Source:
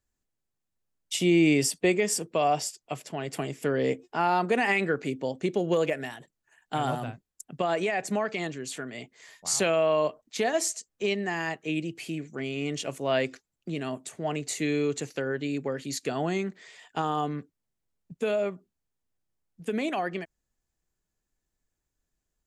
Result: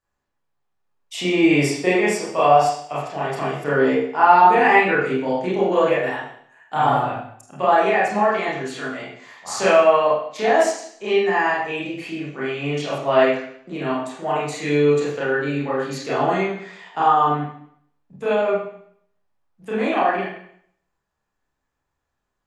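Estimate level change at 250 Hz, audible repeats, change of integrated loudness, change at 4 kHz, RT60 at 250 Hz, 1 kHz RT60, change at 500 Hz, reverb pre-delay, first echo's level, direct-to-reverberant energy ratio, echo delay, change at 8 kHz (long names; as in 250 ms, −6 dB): +5.5 dB, no echo audible, +9.0 dB, +4.0 dB, 0.60 s, 0.60 s, +9.0 dB, 28 ms, no echo audible, −9.0 dB, no echo audible, −3.0 dB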